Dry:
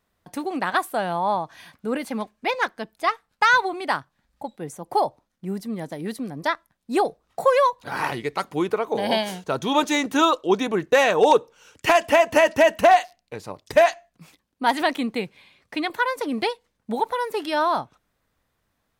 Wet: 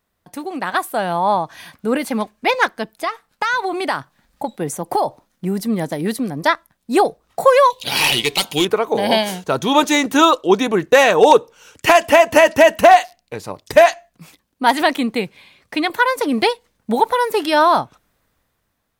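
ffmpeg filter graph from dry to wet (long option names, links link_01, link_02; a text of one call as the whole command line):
ffmpeg -i in.wav -filter_complex "[0:a]asettb=1/sr,asplit=3[link_01][link_02][link_03];[link_01]atrim=end=2.904[link_04];[link_02]atrim=start=2.9:end=5.67,asetpts=PTS-STARTPTS,afade=type=in:duration=0.004:curve=qsin,afade=type=out:start_time=2.766:duration=0.004:curve=qsin,equalizer=frequency=67:width_type=o:width=1:gain=-7.5,acompressor=threshold=-27dB:ratio=3:attack=3.2:release=140:knee=1:detection=peak[link_05];[link_03]atrim=start=5.666[link_06];[link_04][link_05]acrossfade=duration=0.004:curve1=hsin:curve2=qsin[link_07];[link_07][link_06]acrossfade=duration=0.004:curve1=qsin:curve2=hsin,asettb=1/sr,asplit=3[link_08][link_09][link_10];[link_08]atrim=end=7.704[link_11];[link_09]atrim=start=7.7:end=8.65,asetpts=PTS-STARTPTS,afade=type=in:duration=0.004:curve=qsin,afade=type=out:start_time=0.946:duration=0.004:curve=qsin,highshelf=frequency=2100:width_type=q:width=3:gain=12,asoftclip=type=hard:threshold=-16.5dB,bandreject=frequency=102.6:width_type=h:width=4,bandreject=frequency=205.2:width_type=h:width=4,bandreject=frequency=307.8:width_type=h:width=4,bandreject=frequency=410.4:width_type=h:width=4,bandreject=frequency=513:width_type=h:width=4,bandreject=frequency=615.6:width_type=h:width=4,bandreject=frequency=718.2:width_type=h:width=4,bandreject=frequency=820.8:width_type=h:width=4,bandreject=frequency=923.4:width_type=h:width=4,bandreject=frequency=1026:width_type=h:width=4,bandreject=frequency=1128.6:width_type=h:width=4,bandreject=frequency=1231.2:width_type=h:width=4,bandreject=frequency=1333.8:width_type=h:width=4,bandreject=frequency=1436.4:width_type=h:width=4,bandreject=frequency=1539:width_type=h:width=4,bandreject=frequency=1641.6:width_type=h:width=4,bandreject=frequency=1744.2:width_type=h:width=4[link_12];[link_10]atrim=start=8.646[link_13];[link_11][link_12]acrossfade=duration=0.004:curve1=hsin:curve2=qsin[link_14];[link_14][link_13]acrossfade=duration=0.004:curve1=qsin:curve2=hsin,highshelf=frequency=10000:gain=5.5,dynaudnorm=framelen=280:gausssize=7:maxgain=11.5dB" out.wav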